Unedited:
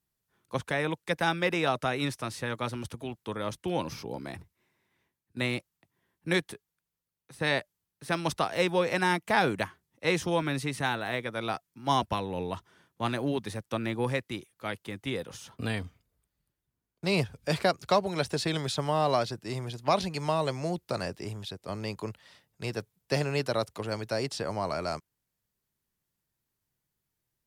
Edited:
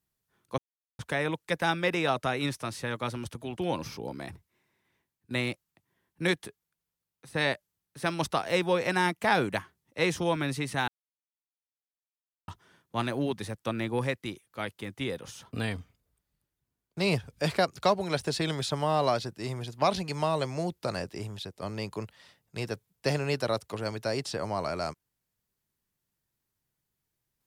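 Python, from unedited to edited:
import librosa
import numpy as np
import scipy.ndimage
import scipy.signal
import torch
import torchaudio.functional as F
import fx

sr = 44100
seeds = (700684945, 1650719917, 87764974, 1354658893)

y = fx.edit(x, sr, fx.insert_silence(at_s=0.58, length_s=0.41),
    fx.cut(start_s=3.16, length_s=0.47),
    fx.silence(start_s=10.94, length_s=1.6), tone=tone)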